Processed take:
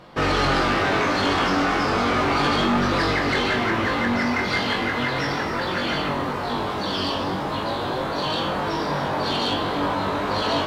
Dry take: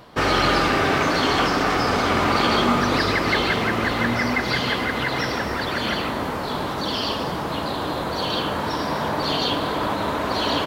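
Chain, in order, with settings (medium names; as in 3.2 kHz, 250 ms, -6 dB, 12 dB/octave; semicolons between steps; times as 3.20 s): treble shelf 8.4 kHz -11.5 dB; flutter echo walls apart 3.6 m, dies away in 0.28 s; saturation -13.5 dBFS, distortion -16 dB; flange 0.35 Hz, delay 5.4 ms, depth 5.7 ms, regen +66%; trim +3.5 dB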